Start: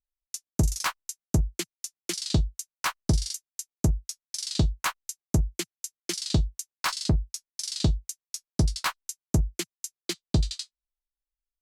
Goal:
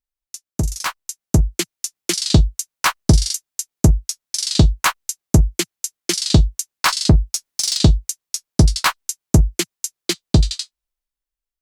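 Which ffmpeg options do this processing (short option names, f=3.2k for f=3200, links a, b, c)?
-filter_complex "[0:a]dynaudnorm=f=260:g=9:m=11.5dB,asettb=1/sr,asplit=3[a][b][c];[a]atrim=end=7.334[d];[b]atrim=start=7.33:end=7.77,asetpts=PTS-STARTPTS,afade=t=in:d=0.004:c=qsin,afade=t=out:st=0.436:d=0.004:c=qsin,aeval=exprs='0.355*(cos(1*acos(clip(val(0)/0.355,-1,1)))-cos(1*PI/2))+0.0447*(cos(5*acos(clip(val(0)/0.355,-1,1)))-cos(5*PI/2))':c=same[e];[c]atrim=start=7.766[f];[d][e]acrossfade=d=0.004:c1=hsin:c2=qsin[g];[g][f]acrossfade=d=0.004:c1=qsin:c2=hsin,volume=1.5dB"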